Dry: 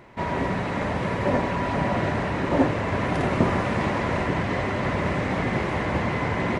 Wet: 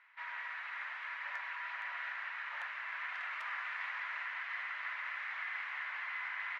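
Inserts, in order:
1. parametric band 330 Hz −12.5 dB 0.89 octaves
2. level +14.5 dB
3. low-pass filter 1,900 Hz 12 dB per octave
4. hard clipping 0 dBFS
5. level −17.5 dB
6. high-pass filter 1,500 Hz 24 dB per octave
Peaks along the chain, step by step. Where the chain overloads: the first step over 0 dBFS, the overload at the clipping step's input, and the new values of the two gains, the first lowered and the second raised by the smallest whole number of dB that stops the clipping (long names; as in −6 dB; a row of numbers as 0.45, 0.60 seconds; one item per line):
−11.0, +3.5, +3.5, 0.0, −17.5, −28.0 dBFS
step 2, 3.5 dB
step 2 +10.5 dB, step 5 −13.5 dB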